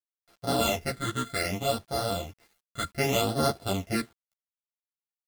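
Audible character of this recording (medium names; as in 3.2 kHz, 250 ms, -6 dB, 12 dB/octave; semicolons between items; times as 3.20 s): a buzz of ramps at a fixed pitch in blocks of 64 samples; phasing stages 8, 0.65 Hz, lowest notch 710–2400 Hz; a quantiser's noise floor 10-bit, dither none; a shimmering, thickened sound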